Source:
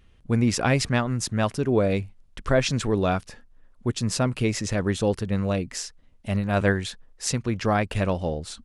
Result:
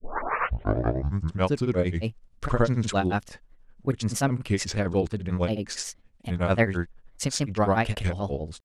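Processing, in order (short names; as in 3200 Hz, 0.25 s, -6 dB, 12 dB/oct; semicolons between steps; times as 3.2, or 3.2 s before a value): tape start at the beginning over 1.58 s; grains 0.142 s, grains 11/s, pitch spread up and down by 3 st; gain +1 dB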